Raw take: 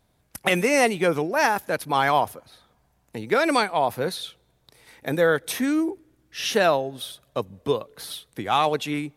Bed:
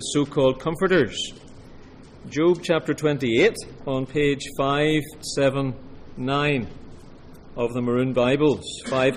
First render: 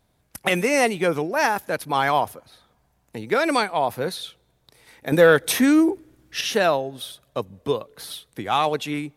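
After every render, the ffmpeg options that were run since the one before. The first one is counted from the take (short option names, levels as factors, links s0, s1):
-filter_complex "[0:a]asettb=1/sr,asplit=3[s0][s1][s2];[s0]atrim=end=5.124[s3];[s1]atrim=start=5.12:end=6.41,asetpts=PTS-STARTPTS,afade=t=in:d=0.004:c=qsin,afade=t=out:st=1.286:d=0.004:c=qsin,acontrast=72[s4];[s2]atrim=start=6.406[s5];[s3][s4]acrossfade=d=0.004:c1=hsin:c2=qsin[s6];[s6][s5]acrossfade=d=0.004:c1=qsin:c2=hsin"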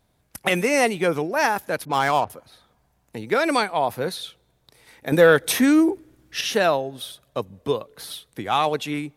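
-filter_complex "[0:a]asettb=1/sr,asplit=3[s0][s1][s2];[s0]atrim=end=1.854[s3];[s1]atrim=start=1.85:end=2.3,asetpts=PTS-STARTPTS,afade=t=in:d=0.004:c=qsin,afade=t=out:st=0.446:d=0.004:c=qsin,adynamicsmooth=sensitivity=4.5:basefreq=1100[s4];[s2]atrim=start=2.296[s5];[s3][s4]acrossfade=d=0.004:c1=hsin:c2=qsin[s6];[s6][s5]acrossfade=d=0.004:c1=qsin:c2=hsin"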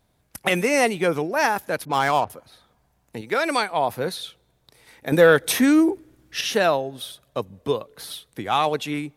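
-filter_complex "[0:a]asettb=1/sr,asplit=3[s0][s1][s2];[s0]atrim=end=3.214[s3];[s1]atrim=start=3.21:end=3.71,asetpts=PTS-STARTPTS,afade=t=in:d=0.004:c=qsin,afade=t=out:st=0.496:d=0.004:c=qsin,lowshelf=f=420:g=-6.5[s4];[s2]atrim=start=3.706[s5];[s3][s4]acrossfade=d=0.004:c1=hsin:c2=qsin[s6];[s6][s5]acrossfade=d=0.004:c1=qsin:c2=hsin"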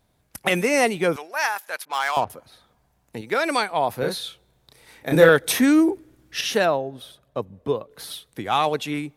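-filter_complex "[0:a]asettb=1/sr,asplit=3[s0][s1][s2];[s0]atrim=end=1.164[s3];[s1]atrim=start=1.16:end=2.17,asetpts=PTS-STARTPTS,afade=t=in:d=0.004:c=qsin,afade=t=out:st=1.006:d=0.004:c=qsin,highpass=990[s4];[s2]atrim=start=2.166[s5];[s3][s4]acrossfade=d=0.004:c1=hsin:c2=qsin[s6];[s6][s5]acrossfade=d=0.004:c1=qsin:c2=hsin,asettb=1/sr,asplit=3[s7][s8][s9];[s7]atrim=end=3.994[s10];[s8]atrim=start=3.99:end=5.29,asetpts=PTS-STARTPTS,afade=t=in:d=0.004:c=qsin,afade=t=out:st=1.296:d=0.004:c=qsin,asplit=2[s11][s12];[s12]adelay=31,volume=0.708[s13];[s11][s13]amix=inputs=2:normalize=0,atrim=end_sample=57330[s14];[s9]atrim=start=5.286[s15];[s10][s14]acrossfade=d=0.004:c1=hsin:c2=qsin[s16];[s16][s15]acrossfade=d=0.004:c1=qsin:c2=hsin,asplit=3[s17][s18][s19];[s17]afade=t=out:st=6.64:d=0.02[s20];[s18]highshelf=f=2300:g=-10.5,afade=t=in:st=6.64:d=0.02,afade=t=out:st=7.9:d=0.02[s21];[s19]afade=t=in:st=7.9:d=0.02[s22];[s20][s21][s22]amix=inputs=3:normalize=0"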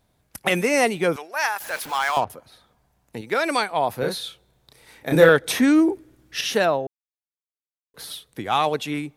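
-filter_complex "[0:a]asettb=1/sr,asplit=3[s0][s1][s2];[s0]atrim=end=1.604[s3];[s1]atrim=start=1.6:end=2.18,asetpts=PTS-STARTPTS,afade=t=in:d=0.004:c=qsin,afade=t=out:st=0.576:d=0.004:c=qsin,aeval=exprs='val(0)+0.5*0.0251*sgn(val(0))':c=same[s4];[s2]atrim=start=2.176[s5];[s3][s4]acrossfade=d=0.004:c1=hsin:c2=qsin[s6];[s6][s5]acrossfade=d=0.004:c1=qsin:c2=hsin,asettb=1/sr,asplit=3[s7][s8][s9];[s7]atrim=end=5.324[s10];[s8]atrim=start=5.32:end=5.9,asetpts=PTS-STARTPTS,afade=t=in:d=0.004:c=qsin,afade=t=out:st=0.576:d=0.004:c=qsin,highshelf=f=10000:g=-10[s11];[s9]atrim=start=5.896[s12];[s10][s11]acrossfade=d=0.004:c1=hsin:c2=qsin[s13];[s13][s12]acrossfade=d=0.004:c1=qsin:c2=hsin,asplit=3[s14][s15][s16];[s14]atrim=end=6.87,asetpts=PTS-STARTPTS,afade=t=out:st=6.866:d=0.004:c=hsin[s17];[s15]atrim=start=6.87:end=7.94,asetpts=PTS-STARTPTS,volume=0[s18];[s16]atrim=start=7.94,asetpts=PTS-STARTPTS,afade=t=in:d=0.004:c=hsin[s19];[s17][s18][s19]concat=n=3:v=0:a=1"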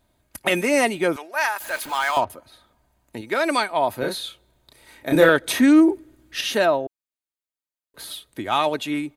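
-af "bandreject=f=5500:w=9.2,aecho=1:1:3.2:0.42"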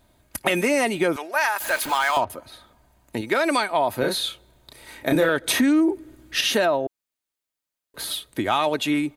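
-filter_complex "[0:a]asplit=2[s0][s1];[s1]alimiter=limit=0.224:level=0:latency=1:release=20,volume=1[s2];[s0][s2]amix=inputs=2:normalize=0,acompressor=threshold=0.112:ratio=3"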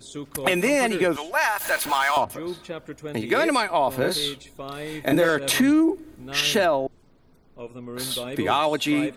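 -filter_complex "[1:a]volume=0.211[s0];[0:a][s0]amix=inputs=2:normalize=0"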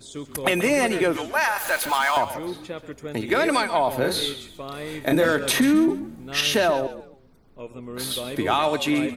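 -filter_complex "[0:a]asplit=4[s0][s1][s2][s3];[s1]adelay=134,afreqshift=-48,volume=0.224[s4];[s2]adelay=268,afreqshift=-96,volume=0.0716[s5];[s3]adelay=402,afreqshift=-144,volume=0.0229[s6];[s0][s4][s5][s6]amix=inputs=4:normalize=0"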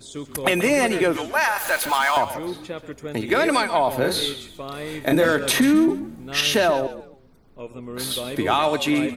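-af "volume=1.19"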